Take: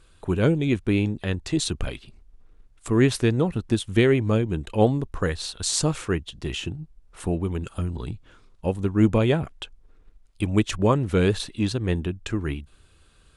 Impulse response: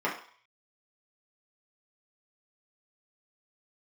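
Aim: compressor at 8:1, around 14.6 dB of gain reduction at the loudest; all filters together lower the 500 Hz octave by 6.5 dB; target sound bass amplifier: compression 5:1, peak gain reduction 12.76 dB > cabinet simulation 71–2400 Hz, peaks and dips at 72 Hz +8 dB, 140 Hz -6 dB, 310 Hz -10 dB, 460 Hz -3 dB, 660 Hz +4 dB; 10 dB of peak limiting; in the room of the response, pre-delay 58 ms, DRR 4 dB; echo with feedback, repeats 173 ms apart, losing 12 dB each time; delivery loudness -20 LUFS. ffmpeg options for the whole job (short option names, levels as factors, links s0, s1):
-filter_complex "[0:a]equalizer=f=500:t=o:g=-5,acompressor=threshold=0.0316:ratio=8,alimiter=level_in=1.33:limit=0.0631:level=0:latency=1,volume=0.75,aecho=1:1:173|346|519:0.251|0.0628|0.0157,asplit=2[s0][s1];[1:a]atrim=start_sample=2205,adelay=58[s2];[s1][s2]afir=irnorm=-1:irlink=0,volume=0.178[s3];[s0][s3]amix=inputs=2:normalize=0,acompressor=threshold=0.00708:ratio=5,highpass=f=71:w=0.5412,highpass=f=71:w=1.3066,equalizer=f=72:t=q:w=4:g=8,equalizer=f=140:t=q:w=4:g=-6,equalizer=f=310:t=q:w=4:g=-10,equalizer=f=460:t=q:w=4:g=-3,equalizer=f=660:t=q:w=4:g=4,lowpass=f=2400:w=0.5412,lowpass=f=2400:w=1.3066,volume=28.2"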